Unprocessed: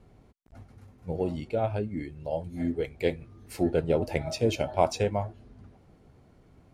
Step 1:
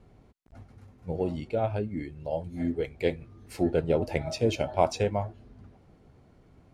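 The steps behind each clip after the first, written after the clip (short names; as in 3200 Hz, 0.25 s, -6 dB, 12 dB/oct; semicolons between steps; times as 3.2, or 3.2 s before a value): high shelf 12000 Hz -9.5 dB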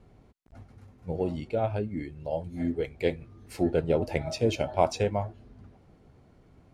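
nothing audible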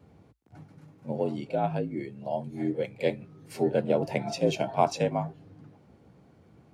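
frequency shift +54 Hz; pre-echo 43 ms -19.5 dB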